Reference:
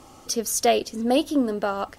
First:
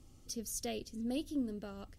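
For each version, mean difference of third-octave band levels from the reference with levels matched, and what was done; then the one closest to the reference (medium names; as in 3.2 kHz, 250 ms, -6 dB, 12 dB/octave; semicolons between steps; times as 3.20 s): 4.5 dB: amplifier tone stack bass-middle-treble 10-0-1; trim +5.5 dB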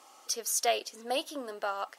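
7.0 dB: high-pass 710 Hz 12 dB/octave; trim -4.5 dB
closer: first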